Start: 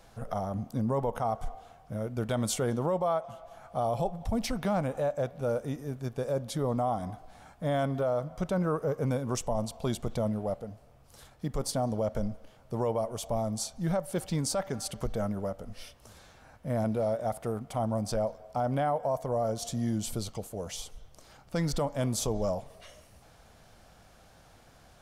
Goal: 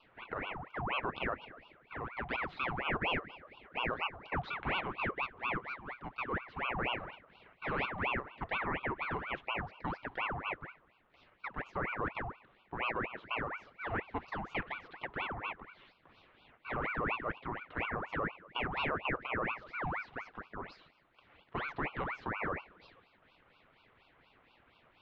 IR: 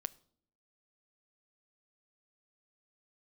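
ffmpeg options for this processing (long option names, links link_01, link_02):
-filter_complex "[0:a]highpass=frequency=180:width_type=q:width=0.5412,highpass=frequency=180:width_type=q:width=1.307,lowpass=frequency=2600:width_type=q:width=0.5176,lowpass=frequency=2600:width_type=q:width=0.7071,lowpass=frequency=2600:width_type=q:width=1.932,afreqshift=210,asplit=2[link_01][link_02];[1:a]atrim=start_sample=2205,highshelf=frequency=5600:gain=8.5[link_03];[link_02][link_03]afir=irnorm=-1:irlink=0,volume=2dB[link_04];[link_01][link_04]amix=inputs=2:normalize=0,aeval=exprs='val(0)*sin(2*PI*1100*n/s+1100*0.75/4.2*sin(2*PI*4.2*n/s))':channel_layout=same,volume=-9dB"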